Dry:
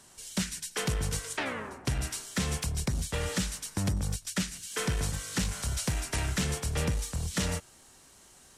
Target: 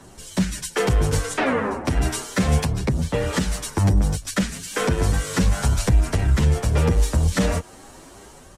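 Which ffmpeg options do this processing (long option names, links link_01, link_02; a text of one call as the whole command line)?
ffmpeg -i in.wav -filter_complex "[0:a]aphaser=in_gain=1:out_gain=1:delay=4.4:decay=0.23:speed=0.33:type=triangular,asettb=1/sr,asplit=3[link_01][link_02][link_03];[link_01]atrim=end=1.264[link_04];[link_02]atrim=start=1.26:end=1.87,asetpts=PTS-STARTPTS,afade=type=in:duration=0.004:curve=qsin,afade=type=out:start_time=0.606:duration=0.004:curve=qsin,lowpass=12000[link_05];[link_03]atrim=start=1.866[link_06];[link_04][link_05]acrossfade=duration=0.004:curve1=hsin:curve2=qsin[link_07];[link_07][link_06]acrossfade=duration=0.004:curve1=qsin:curve2=hsin,asettb=1/sr,asplit=3[link_08][link_09][link_10];[link_08]atrim=end=2.644[link_11];[link_09]atrim=start=2.64:end=3.33,asetpts=PTS-STARTPTS,afade=type=in:duration=0.004:curve=qsin,afade=type=out:start_time=0.686:duration=0.004:curve=qsin,acrossover=split=83|5200[link_12][link_13][link_14];[link_12]acompressor=threshold=-44dB:ratio=4[link_15];[link_13]acompressor=threshold=-37dB:ratio=4[link_16];[link_14]acompressor=threshold=-51dB:ratio=4[link_17];[link_15][link_16][link_17]amix=inputs=3:normalize=0[link_18];[link_10]atrim=start=3.326[link_19];[link_11][link_18]acrossfade=duration=0.004:curve1=hsin:curve2=qsin[link_20];[link_20][link_19]acrossfade=duration=0.004:curve1=qsin:curve2=hsin,asplit=3[link_21][link_22][link_23];[link_21]afade=type=out:start_time=5.77:duration=0.02[link_24];[link_22]lowshelf=frequency=90:gain=12,afade=type=in:start_time=5.77:duration=0.02,afade=type=out:start_time=6.55:duration=0.02[link_25];[link_23]afade=type=in:start_time=6.55:duration=0.02[link_26];[link_24][link_25][link_26]amix=inputs=3:normalize=0,acrossover=split=260[link_27][link_28];[link_28]dynaudnorm=framelen=330:gausssize=3:maxgain=4.5dB[link_29];[link_27][link_29]amix=inputs=2:normalize=0,tiltshelf=frequency=1500:gain=7,asplit=2[link_30][link_31];[link_31]asoftclip=type=tanh:threshold=-21dB,volume=-3.5dB[link_32];[link_30][link_32]amix=inputs=2:normalize=0,alimiter=limit=-16dB:level=0:latency=1:release=199,asplit=2[link_33][link_34];[link_34]adelay=8.7,afreqshift=2.6[link_35];[link_33][link_35]amix=inputs=2:normalize=1,volume=7.5dB" out.wav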